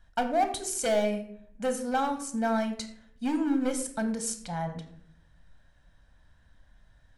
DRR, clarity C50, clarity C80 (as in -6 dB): 6.5 dB, 10.5 dB, 12.5 dB